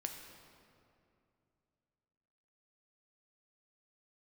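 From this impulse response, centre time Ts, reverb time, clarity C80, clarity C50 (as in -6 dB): 51 ms, 2.6 s, 6.5 dB, 5.5 dB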